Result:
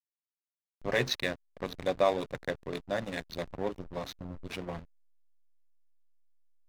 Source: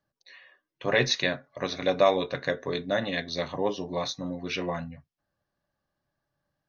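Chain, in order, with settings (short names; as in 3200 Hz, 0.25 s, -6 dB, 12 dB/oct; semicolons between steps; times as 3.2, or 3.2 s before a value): backlash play -25.5 dBFS; gain -4.5 dB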